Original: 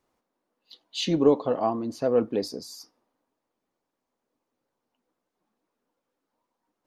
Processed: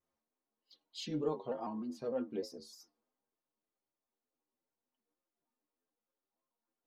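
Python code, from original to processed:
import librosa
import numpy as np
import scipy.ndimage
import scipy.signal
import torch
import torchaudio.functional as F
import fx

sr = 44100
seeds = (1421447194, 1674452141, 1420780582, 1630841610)

y = fx.stiff_resonator(x, sr, f0_hz=75.0, decay_s=0.23, stiffness=0.008)
y = fx.vibrato_shape(y, sr, shape='square', rate_hz=3.3, depth_cents=100.0)
y = y * librosa.db_to_amplitude(-6.5)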